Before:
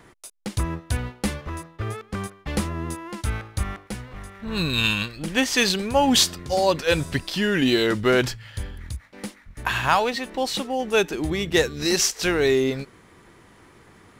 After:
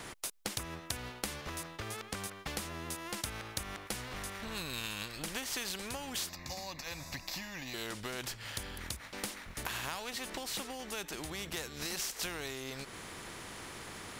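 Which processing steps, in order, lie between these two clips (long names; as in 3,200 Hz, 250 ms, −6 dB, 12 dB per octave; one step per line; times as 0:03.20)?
downward compressor 10 to 1, threshold −33 dBFS, peak gain reduction 19.5 dB
0:06.29–0:07.74: phaser with its sweep stopped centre 2,100 Hz, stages 8
every bin compressed towards the loudest bin 2 to 1
level +1.5 dB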